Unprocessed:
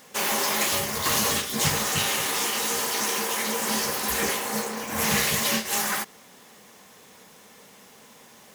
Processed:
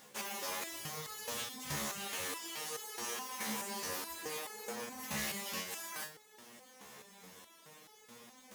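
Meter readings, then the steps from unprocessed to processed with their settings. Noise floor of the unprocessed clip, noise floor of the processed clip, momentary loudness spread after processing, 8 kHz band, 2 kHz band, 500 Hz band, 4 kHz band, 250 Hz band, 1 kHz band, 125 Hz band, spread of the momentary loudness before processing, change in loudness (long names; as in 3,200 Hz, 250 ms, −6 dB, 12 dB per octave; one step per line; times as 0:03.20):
−52 dBFS, −61 dBFS, 18 LU, −16.0 dB, −15.5 dB, −15.0 dB, −16.0 dB, −15.5 dB, −15.5 dB, −16.5 dB, 5 LU, −16.0 dB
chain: reversed playback
downward compressor 6 to 1, threshold −33 dBFS, peak gain reduction 13.5 dB
reversed playback
step-sequenced resonator 4.7 Hz 71–430 Hz
level +5 dB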